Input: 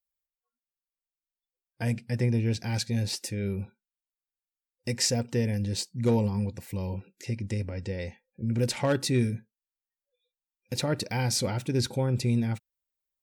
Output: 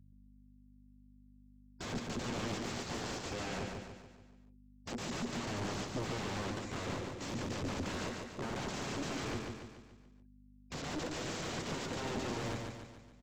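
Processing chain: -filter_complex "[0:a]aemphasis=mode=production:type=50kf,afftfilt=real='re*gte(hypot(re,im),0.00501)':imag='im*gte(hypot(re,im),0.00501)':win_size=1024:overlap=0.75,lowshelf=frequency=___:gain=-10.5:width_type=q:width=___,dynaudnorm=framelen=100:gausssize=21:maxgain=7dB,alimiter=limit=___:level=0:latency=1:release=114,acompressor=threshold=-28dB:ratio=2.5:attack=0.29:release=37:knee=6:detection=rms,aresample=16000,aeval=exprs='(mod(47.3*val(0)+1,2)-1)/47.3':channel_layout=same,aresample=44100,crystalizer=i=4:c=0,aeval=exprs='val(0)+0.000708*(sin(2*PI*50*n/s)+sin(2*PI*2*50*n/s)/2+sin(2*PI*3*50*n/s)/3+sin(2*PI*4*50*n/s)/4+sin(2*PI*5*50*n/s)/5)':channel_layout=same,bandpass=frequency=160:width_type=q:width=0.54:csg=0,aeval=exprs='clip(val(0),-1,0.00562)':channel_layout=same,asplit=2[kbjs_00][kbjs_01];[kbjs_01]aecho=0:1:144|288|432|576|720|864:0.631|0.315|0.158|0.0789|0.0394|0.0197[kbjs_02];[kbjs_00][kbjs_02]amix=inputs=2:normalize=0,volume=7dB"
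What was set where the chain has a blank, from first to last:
230, 3, -14dB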